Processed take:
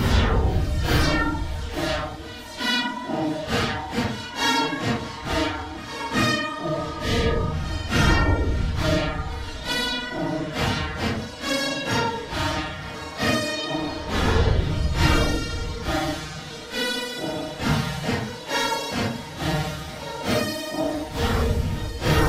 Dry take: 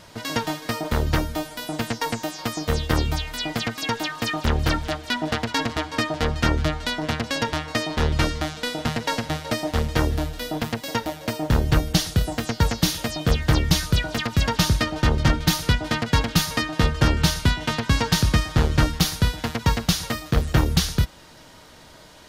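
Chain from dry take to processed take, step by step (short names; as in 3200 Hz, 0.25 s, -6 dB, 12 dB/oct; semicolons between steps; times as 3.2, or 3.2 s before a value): Paulstretch 4×, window 0.05 s, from 4.44; spectral repair 6.62–7.5, 740–1600 Hz before; reverse echo 0.39 s -18.5 dB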